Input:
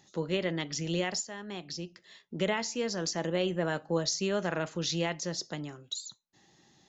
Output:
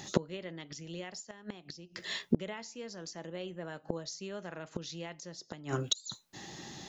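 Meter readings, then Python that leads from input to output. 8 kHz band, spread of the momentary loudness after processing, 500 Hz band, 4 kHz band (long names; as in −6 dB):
can't be measured, 13 LU, −8.0 dB, −5.0 dB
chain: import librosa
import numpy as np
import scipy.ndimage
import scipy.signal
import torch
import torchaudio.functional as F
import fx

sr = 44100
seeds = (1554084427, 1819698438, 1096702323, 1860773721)

y = fx.gate_flip(x, sr, shuts_db=-30.0, range_db=-28)
y = y * 10.0 ** (16.5 / 20.0)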